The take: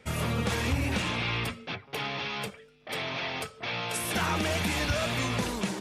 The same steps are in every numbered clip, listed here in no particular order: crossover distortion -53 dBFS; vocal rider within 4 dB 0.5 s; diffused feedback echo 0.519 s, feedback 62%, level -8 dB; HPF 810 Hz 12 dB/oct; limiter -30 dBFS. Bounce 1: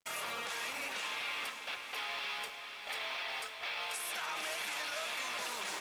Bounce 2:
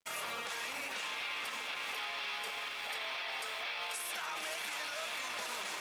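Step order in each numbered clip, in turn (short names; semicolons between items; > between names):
HPF > crossover distortion > vocal rider > limiter > diffused feedback echo; diffused feedback echo > vocal rider > HPF > crossover distortion > limiter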